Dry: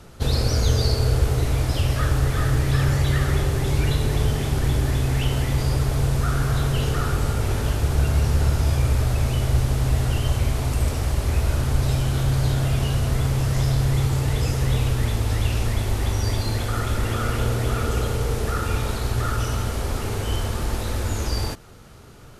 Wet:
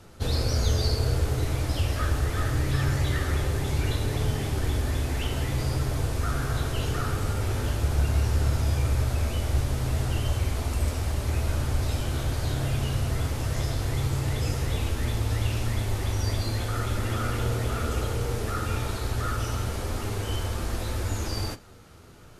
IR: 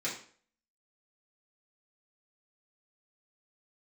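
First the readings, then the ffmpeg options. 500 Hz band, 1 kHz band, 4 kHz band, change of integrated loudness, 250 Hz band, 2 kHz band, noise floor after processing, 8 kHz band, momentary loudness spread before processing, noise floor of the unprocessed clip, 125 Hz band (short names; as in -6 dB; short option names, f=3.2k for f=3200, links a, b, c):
-4.5 dB, -4.0 dB, -4.0 dB, -5.0 dB, -5.0 dB, -4.0 dB, -33 dBFS, -4.0 dB, 5 LU, -29 dBFS, -5.5 dB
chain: -filter_complex "[0:a]flanger=delay=9.5:depth=2.4:regen=-40:speed=0.7:shape=sinusoidal,asplit=2[a][b];[1:a]atrim=start_sample=2205[c];[b][c]afir=irnorm=-1:irlink=0,volume=-17dB[d];[a][d]amix=inputs=2:normalize=0,volume=-1dB"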